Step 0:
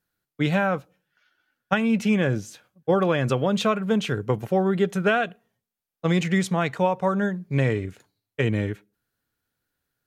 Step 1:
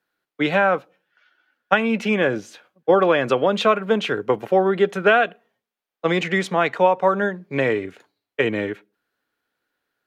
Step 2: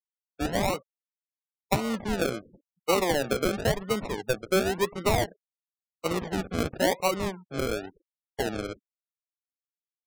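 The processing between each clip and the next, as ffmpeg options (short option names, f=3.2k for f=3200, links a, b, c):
-filter_complex "[0:a]acrossover=split=260 4100:gain=0.112 1 0.251[a][b][c];[a][b][c]amix=inputs=3:normalize=0,volume=6.5dB"
-af "acrusher=samples=37:mix=1:aa=0.000001:lfo=1:lforange=22.2:lforate=0.95,afftfilt=real='re*gte(hypot(re,im),0.0178)':imag='im*gte(hypot(re,im),0.0178)':win_size=1024:overlap=0.75,volume=-8.5dB"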